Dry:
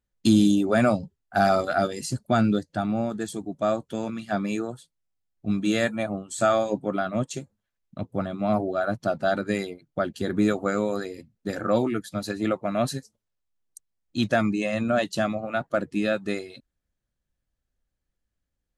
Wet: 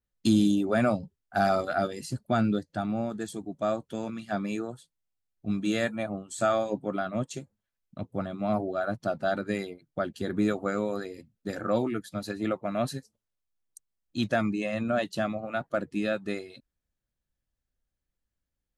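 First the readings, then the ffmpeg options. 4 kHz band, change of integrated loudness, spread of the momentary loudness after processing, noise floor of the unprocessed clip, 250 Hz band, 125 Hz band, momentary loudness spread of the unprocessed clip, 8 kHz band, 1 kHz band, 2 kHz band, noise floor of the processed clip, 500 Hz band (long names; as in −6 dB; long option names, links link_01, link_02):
−4.5 dB, −4.0 dB, 11 LU, −82 dBFS, −4.0 dB, −4.0 dB, 11 LU, −6.0 dB, −4.0 dB, −4.0 dB, below −85 dBFS, −4.0 dB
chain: -af "adynamicequalizer=threshold=0.00316:dfrequency=6900:dqfactor=1.1:tfrequency=6900:tqfactor=1.1:attack=5:release=100:ratio=0.375:range=3.5:mode=cutabove:tftype=bell,volume=-4dB"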